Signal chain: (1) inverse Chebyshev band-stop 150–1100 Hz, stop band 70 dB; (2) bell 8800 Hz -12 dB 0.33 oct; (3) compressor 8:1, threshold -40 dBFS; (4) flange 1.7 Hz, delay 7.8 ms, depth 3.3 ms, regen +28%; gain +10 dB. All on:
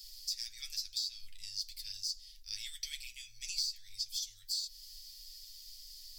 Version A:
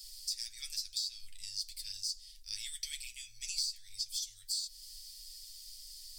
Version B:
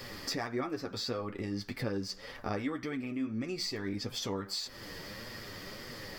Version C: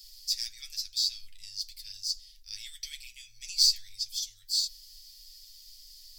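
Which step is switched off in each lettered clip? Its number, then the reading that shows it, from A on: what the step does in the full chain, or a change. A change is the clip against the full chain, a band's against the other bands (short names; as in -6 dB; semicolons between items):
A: 2, momentary loudness spread change -1 LU; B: 1, momentary loudness spread change -5 LU; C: 3, mean gain reduction 2.0 dB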